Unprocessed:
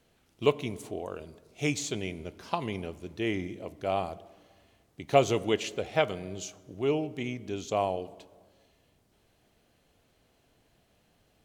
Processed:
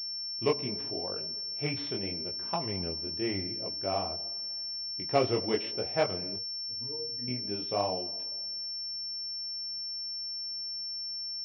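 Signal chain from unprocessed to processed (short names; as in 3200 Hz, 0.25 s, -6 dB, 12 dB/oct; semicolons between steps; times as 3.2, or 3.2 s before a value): 6.36–7.28 octave resonator A#, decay 0.2 s; chorus voices 2, 0.82 Hz, delay 21 ms, depth 4.5 ms; pulse-width modulation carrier 5400 Hz; gain +1 dB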